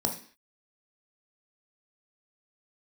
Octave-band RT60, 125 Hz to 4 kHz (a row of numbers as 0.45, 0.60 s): 0.35 s, 0.45 s, 0.45 s, 0.45 s, 0.55 s, n/a